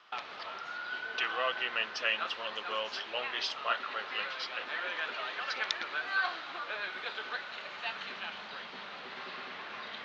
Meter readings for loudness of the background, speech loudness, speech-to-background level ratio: -38.0 LUFS, -35.5 LUFS, 2.5 dB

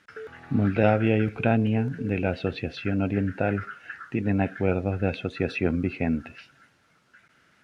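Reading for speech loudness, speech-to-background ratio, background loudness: -26.0 LUFS, 17.0 dB, -43.0 LUFS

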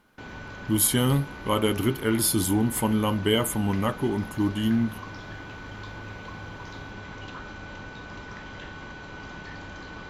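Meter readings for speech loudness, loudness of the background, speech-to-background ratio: -24.5 LUFS, -40.0 LUFS, 15.5 dB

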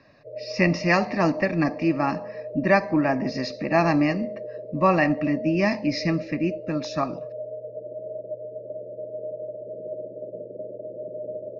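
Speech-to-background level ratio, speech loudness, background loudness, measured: 12.5 dB, -23.5 LUFS, -36.0 LUFS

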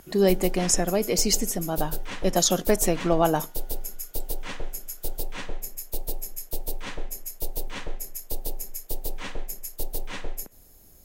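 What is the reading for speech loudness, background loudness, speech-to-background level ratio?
-24.0 LUFS, -35.0 LUFS, 11.0 dB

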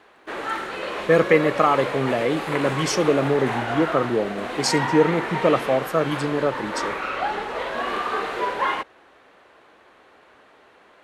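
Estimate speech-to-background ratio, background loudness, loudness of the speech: 5.5 dB, -27.5 LUFS, -22.0 LUFS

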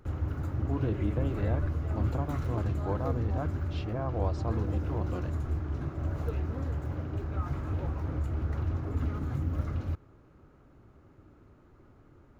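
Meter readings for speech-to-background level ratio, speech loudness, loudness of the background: -3.0 dB, -36.5 LUFS, -33.5 LUFS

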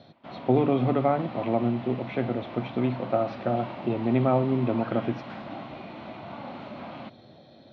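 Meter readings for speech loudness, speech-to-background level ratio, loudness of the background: -27.0 LUFS, 13.0 dB, -40.0 LUFS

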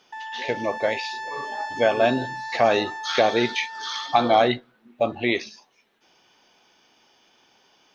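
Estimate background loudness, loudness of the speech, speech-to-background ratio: -33.5 LUFS, -23.5 LUFS, 10.0 dB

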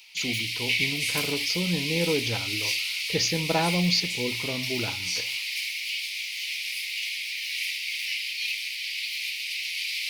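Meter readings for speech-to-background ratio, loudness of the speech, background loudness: -1.0 dB, -29.0 LUFS, -28.0 LUFS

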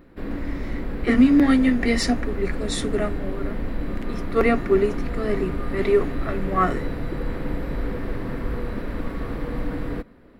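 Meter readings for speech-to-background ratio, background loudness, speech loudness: 9.0 dB, -31.0 LUFS, -22.0 LUFS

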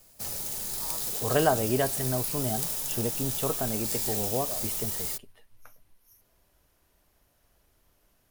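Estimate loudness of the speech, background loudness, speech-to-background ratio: -31.0 LUFS, -29.5 LUFS, -1.5 dB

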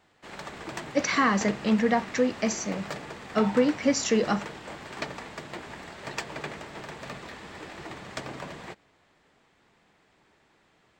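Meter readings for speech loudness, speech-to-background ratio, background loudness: -26.0 LUFS, 13.5 dB, -39.5 LUFS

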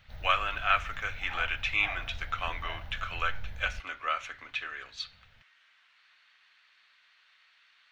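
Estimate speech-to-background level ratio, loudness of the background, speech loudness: 13.5 dB, -45.5 LUFS, -32.0 LUFS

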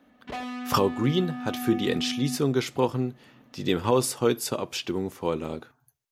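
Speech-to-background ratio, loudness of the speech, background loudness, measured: 8.0 dB, -27.0 LUFS, -35.0 LUFS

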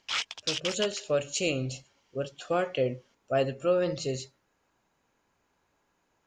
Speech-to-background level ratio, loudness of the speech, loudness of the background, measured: 2.0 dB, -30.5 LUFS, -32.5 LUFS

